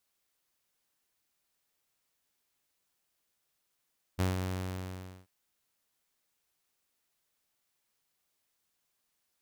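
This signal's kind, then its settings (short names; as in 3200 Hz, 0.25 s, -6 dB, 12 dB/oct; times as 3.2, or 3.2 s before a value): ADSR saw 92.7 Hz, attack 25 ms, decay 0.148 s, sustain -6 dB, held 0.22 s, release 0.866 s -23 dBFS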